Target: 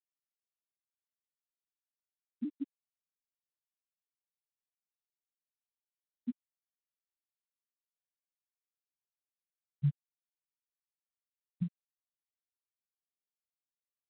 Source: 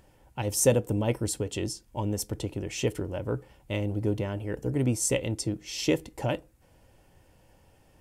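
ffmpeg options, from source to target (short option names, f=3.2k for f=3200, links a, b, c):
-filter_complex "[0:a]afftfilt=real='re*gte(hypot(re,im),0.708)':imag='im*gte(hypot(re,im),0.708)':win_size=1024:overlap=0.75,acompressor=threshold=-37dB:ratio=12,alimiter=level_in=14dB:limit=-24dB:level=0:latency=1:release=173,volume=-14dB,lowpass=1.4k,acrossover=split=790[a][b];[a]adelay=720[c];[c][b]amix=inputs=2:normalize=0,acompressor=mode=upward:threshold=-48dB:ratio=2.5,equalizer=f=250:w=3.2:g=8.5,asetrate=25049,aresample=44100,asoftclip=type=hard:threshold=-32.5dB,afftfilt=real='re*gte(hypot(re,im),0.0562)':imag='im*gte(hypot(re,im),0.0562)':win_size=1024:overlap=0.75,lowshelf=f=70:g=-10.5,volume=11.5dB" -ar 8000 -c:a pcm_mulaw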